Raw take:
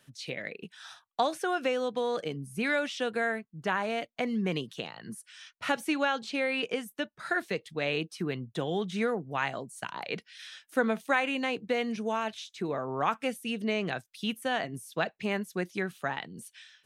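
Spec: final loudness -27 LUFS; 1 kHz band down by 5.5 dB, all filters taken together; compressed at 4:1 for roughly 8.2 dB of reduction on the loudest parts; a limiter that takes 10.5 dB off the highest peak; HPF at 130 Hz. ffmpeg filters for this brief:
-af "highpass=130,equalizer=f=1000:t=o:g=-8,acompressor=threshold=0.0178:ratio=4,volume=5.01,alimiter=limit=0.168:level=0:latency=1"

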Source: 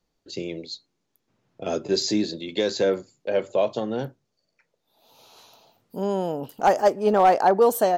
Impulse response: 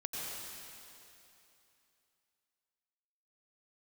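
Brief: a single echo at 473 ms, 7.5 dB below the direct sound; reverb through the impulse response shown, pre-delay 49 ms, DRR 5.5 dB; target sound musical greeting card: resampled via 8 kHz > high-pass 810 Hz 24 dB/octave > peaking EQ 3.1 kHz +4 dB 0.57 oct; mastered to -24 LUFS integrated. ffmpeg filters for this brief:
-filter_complex "[0:a]aecho=1:1:473:0.422,asplit=2[s0][s1];[1:a]atrim=start_sample=2205,adelay=49[s2];[s1][s2]afir=irnorm=-1:irlink=0,volume=0.398[s3];[s0][s3]amix=inputs=2:normalize=0,aresample=8000,aresample=44100,highpass=f=810:w=0.5412,highpass=f=810:w=1.3066,equalizer=f=3100:t=o:w=0.57:g=4,volume=1.78"

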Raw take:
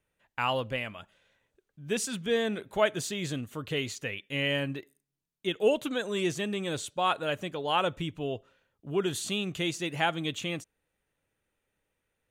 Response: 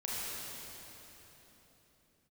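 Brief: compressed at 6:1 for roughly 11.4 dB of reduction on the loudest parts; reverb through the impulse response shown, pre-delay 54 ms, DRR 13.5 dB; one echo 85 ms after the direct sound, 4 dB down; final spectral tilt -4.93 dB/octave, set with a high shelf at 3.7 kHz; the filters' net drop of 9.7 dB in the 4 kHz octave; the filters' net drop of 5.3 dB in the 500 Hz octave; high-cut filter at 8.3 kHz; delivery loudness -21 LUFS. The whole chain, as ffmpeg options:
-filter_complex "[0:a]lowpass=8300,equalizer=f=500:t=o:g=-6.5,highshelf=f=3700:g=-8,equalizer=f=4000:t=o:g=-9,acompressor=threshold=0.0141:ratio=6,aecho=1:1:85:0.631,asplit=2[s0][s1];[1:a]atrim=start_sample=2205,adelay=54[s2];[s1][s2]afir=irnorm=-1:irlink=0,volume=0.126[s3];[s0][s3]amix=inputs=2:normalize=0,volume=9.44"

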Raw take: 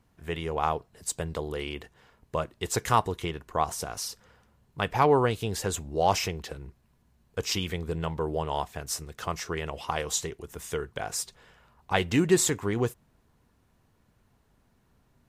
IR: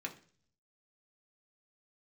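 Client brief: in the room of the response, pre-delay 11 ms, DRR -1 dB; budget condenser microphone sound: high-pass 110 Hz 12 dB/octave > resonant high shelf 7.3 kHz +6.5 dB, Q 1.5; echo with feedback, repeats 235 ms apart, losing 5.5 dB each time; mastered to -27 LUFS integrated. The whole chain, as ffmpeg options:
-filter_complex "[0:a]aecho=1:1:235|470|705|940|1175|1410|1645:0.531|0.281|0.149|0.079|0.0419|0.0222|0.0118,asplit=2[s0][s1];[1:a]atrim=start_sample=2205,adelay=11[s2];[s1][s2]afir=irnorm=-1:irlink=0,volume=1.06[s3];[s0][s3]amix=inputs=2:normalize=0,highpass=110,highshelf=f=7300:t=q:w=1.5:g=6.5,volume=0.794"

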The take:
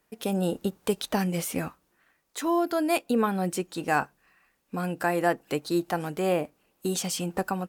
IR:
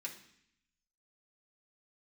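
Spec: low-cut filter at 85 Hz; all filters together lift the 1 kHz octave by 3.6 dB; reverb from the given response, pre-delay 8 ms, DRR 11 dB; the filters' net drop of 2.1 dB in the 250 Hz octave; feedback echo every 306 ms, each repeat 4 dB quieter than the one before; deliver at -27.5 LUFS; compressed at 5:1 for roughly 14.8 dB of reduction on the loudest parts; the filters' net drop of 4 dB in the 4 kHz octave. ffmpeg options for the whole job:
-filter_complex "[0:a]highpass=85,equalizer=f=250:t=o:g=-3.5,equalizer=f=1000:t=o:g=5.5,equalizer=f=4000:t=o:g=-5.5,acompressor=threshold=0.0178:ratio=5,aecho=1:1:306|612|918|1224|1530|1836|2142|2448|2754:0.631|0.398|0.25|0.158|0.0994|0.0626|0.0394|0.0249|0.0157,asplit=2[s0][s1];[1:a]atrim=start_sample=2205,adelay=8[s2];[s1][s2]afir=irnorm=-1:irlink=0,volume=0.335[s3];[s0][s3]amix=inputs=2:normalize=0,volume=2.99"

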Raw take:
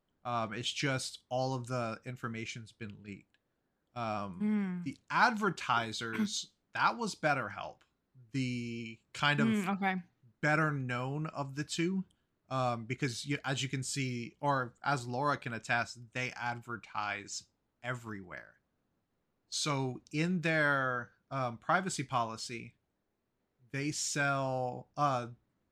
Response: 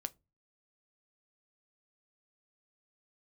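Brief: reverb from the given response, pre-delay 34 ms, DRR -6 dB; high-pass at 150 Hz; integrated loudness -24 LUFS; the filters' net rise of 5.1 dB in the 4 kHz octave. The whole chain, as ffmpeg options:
-filter_complex "[0:a]highpass=150,equalizer=f=4000:t=o:g=6.5,asplit=2[s0][s1];[1:a]atrim=start_sample=2205,adelay=34[s2];[s1][s2]afir=irnorm=-1:irlink=0,volume=2.51[s3];[s0][s3]amix=inputs=2:normalize=0,volume=1.41"

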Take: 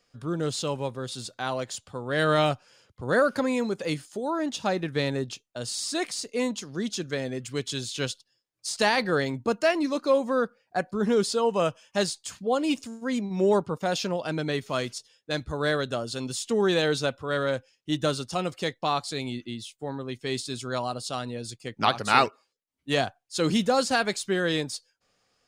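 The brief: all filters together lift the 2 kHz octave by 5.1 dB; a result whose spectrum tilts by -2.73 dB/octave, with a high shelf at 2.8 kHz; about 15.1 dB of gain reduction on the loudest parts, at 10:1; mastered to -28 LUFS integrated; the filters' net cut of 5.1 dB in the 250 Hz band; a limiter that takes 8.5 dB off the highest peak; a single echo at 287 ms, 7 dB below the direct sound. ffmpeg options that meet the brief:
-af "equalizer=f=250:t=o:g=-7,equalizer=f=2000:t=o:g=4.5,highshelf=f=2800:g=6,acompressor=threshold=0.0447:ratio=10,alimiter=limit=0.0841:level=0:latency=1,aecho=1:1:287:0.447,volume=1.68"

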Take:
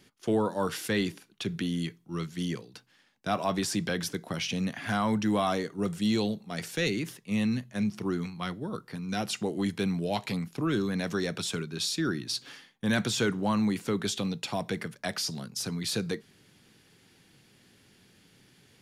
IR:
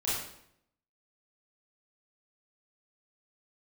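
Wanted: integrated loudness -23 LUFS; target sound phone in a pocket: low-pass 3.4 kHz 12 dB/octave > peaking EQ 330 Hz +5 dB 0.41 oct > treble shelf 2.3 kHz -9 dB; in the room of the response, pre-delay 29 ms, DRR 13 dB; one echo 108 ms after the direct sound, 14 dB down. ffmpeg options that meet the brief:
-filter_complex "[0:a]aecho=1:1:108:0.2,asplit=2[s0][s1];[1:a]atrim=start_sample=2205,adelay=29[s2];[s1][s2]afir=irnorm=-1:irlink=0,volume=0.1[s3];[s0][s3]amix=inputs=2:normalize=0,lowpass=3400,equalizer=f=330:t=o:w=0.41:g=5,highshelf=f=2300:g=-9,volume=2.37"

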